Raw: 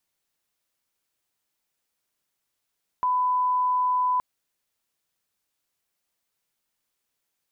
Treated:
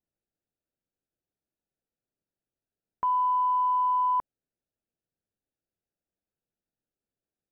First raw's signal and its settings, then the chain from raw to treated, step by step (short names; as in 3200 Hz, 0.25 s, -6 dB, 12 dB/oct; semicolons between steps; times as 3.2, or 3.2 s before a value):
line-up tone -20 dBFS 1.17 s
Wiener smoothing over 41 samples